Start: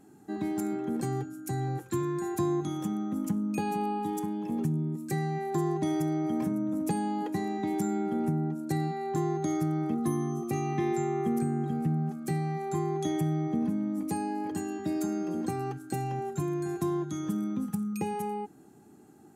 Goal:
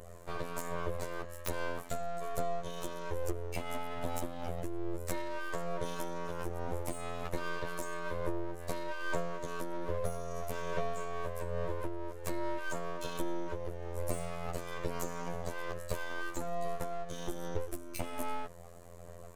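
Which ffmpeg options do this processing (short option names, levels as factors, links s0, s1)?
-af "afftfilt=real='hypot(re,im)*cos(PI*b)':imag='0':win_size=2048:overlap=0.75,acompressor=threshold=0.01:ratio=10,aphaser=in_gain=1:out_gain=1:delay=2.4:decay=0.3:speed=1.2:type=sinusoidal,aeval=exprs='abs(val(0))':c=same,volume=2.82"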